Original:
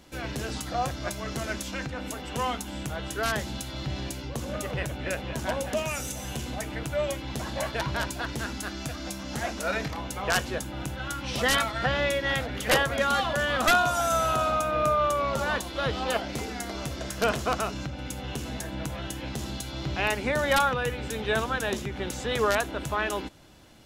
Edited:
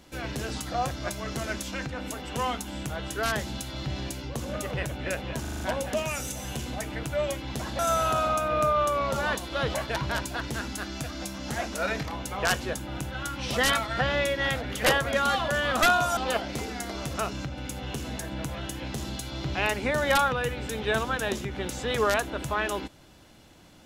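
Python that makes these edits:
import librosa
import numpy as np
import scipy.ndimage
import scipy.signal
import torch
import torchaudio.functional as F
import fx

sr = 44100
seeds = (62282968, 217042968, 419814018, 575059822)

y = fx.edit(x, sr, fx.stutter(start_s=5.41, slice_s=0.04, count=6),
    fx.move(start_s=14.02, length_s=1.95, to_s=7.59),
    fx.cut(start_s=16.94, length_s=0.61), tone=tone)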